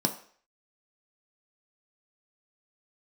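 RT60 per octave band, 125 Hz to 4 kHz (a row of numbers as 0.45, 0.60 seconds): 0.30, 0.40, 0.50, 0.50, 0.55, 0.50 seconds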